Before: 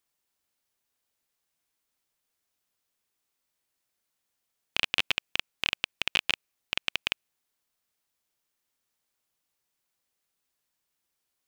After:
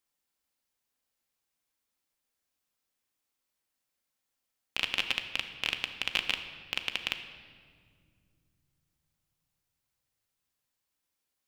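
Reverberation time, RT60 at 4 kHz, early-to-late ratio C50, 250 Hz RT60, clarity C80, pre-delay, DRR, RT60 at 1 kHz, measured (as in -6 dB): 2.1 s, 1.4 s, 9.0 dB, 3.8 s, 10.5 dB, 4 ms, 6.0 dB, 1.8 s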